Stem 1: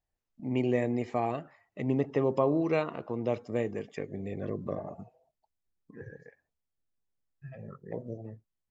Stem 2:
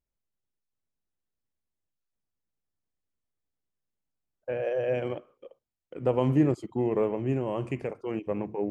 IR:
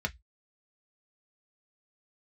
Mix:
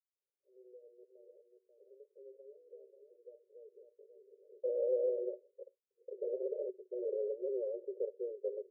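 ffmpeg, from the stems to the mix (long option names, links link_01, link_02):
-filter_complex "[0:a]alimiter=limit=-20.5dB:level=0:latency=1,flanger=delay=2.7:depth=2.3:regen=-46:speed=0.37:shape=sinusoidal,volume=-18dB,asplit=2[link_01][link_02];[link_02]volume=-6dB[link_03];[1:a]adelay=150,volume=-2.5dB[link_04];[link_03]aecho=0:1:538:1[link_05];[link_01][link_04][link_05]amix=inputs=3:normalize=0,aeval=exprs='(mod(14.1*val(0)+1,2)-1)/14.1':channel_layout=same,asuperpass=centerf=470:order=20:qfactor=2.1"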